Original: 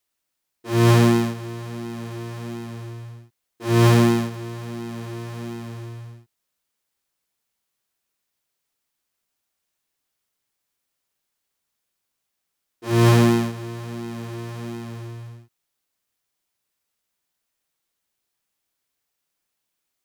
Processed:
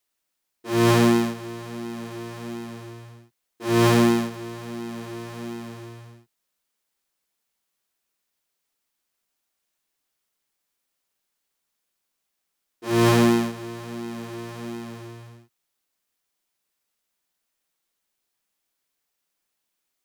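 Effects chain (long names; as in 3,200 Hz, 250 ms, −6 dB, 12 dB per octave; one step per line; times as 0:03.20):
parametric band 100 Hz −14.5 dB 0.45 octaves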